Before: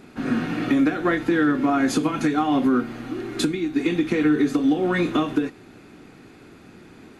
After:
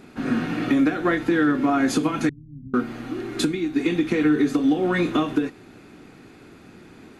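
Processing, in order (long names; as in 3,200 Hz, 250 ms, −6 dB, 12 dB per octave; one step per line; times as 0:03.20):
0:02.29–0:02.74: inverse Chebyshev low-pass filter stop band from 830 Hz, stop band 80 dB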